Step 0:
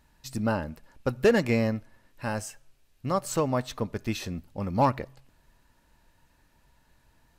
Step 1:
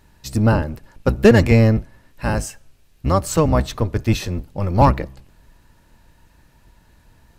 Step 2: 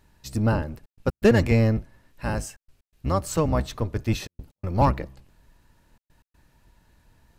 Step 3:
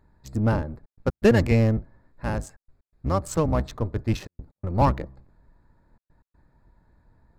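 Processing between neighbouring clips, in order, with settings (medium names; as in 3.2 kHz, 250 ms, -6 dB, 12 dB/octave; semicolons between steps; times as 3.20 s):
octave divider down 1 oct, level +3 dB; trim +8 dB
trance gate "xxxxxxx.x.xxxx" 123 bpm -60 dB; trim -6.5 dB
local Wiener filter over 15 samples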